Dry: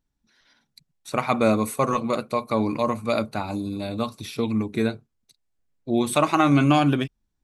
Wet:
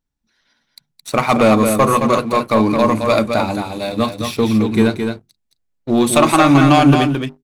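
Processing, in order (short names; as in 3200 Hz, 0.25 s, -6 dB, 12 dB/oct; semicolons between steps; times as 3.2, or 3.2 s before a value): notches 50/100/150/200/250/300/350/400 Hz; sample leveller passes 2; echo 0.218 s -6 dB; gain +2.5 dB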